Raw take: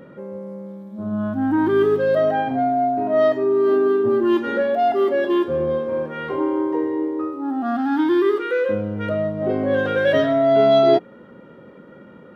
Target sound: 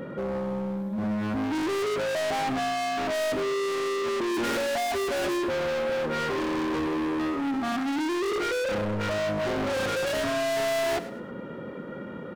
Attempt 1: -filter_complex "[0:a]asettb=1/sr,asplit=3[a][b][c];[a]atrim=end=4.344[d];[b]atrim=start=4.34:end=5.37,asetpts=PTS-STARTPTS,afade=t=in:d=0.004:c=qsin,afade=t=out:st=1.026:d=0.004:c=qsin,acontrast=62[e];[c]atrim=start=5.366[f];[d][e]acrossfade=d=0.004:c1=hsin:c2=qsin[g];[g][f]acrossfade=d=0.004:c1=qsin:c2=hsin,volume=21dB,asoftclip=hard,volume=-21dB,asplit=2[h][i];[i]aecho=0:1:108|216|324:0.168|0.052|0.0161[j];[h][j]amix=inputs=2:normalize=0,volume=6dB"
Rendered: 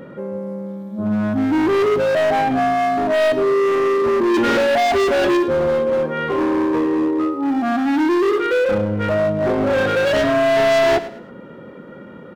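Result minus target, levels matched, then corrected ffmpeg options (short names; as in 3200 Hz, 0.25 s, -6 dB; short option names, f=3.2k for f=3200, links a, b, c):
overloaded stage: distortion -4 dB
-filter_complex "[0:a]asettb=1/sr,asplit=3[a][b][c];[a]atrim=end=4.344[d];[b]atrim=start=4.34:end=5.37,asetpts=PTS-STARTPTS,afade=t=in:d=0.004:c=qsin,afade=t=out:st=1.026:d=0.004:c=qsin,acontrast=62[e];[c]atrim=start=5.366[f];[d][e]acrossfade=d=0.004:c1=hsin:c2=qsin[g];[g][f]acrossfade=d=0.004:c1=qsin:c2=hsin,volume=33dB,asoftclip=hard,volume=-33dB,asplit=2[h][i];[i]aecho=0:1:108|216|324:0.168|0.052|0.0161[j];[h][j]amix=inputs=2:normalize=0,volume=6dB"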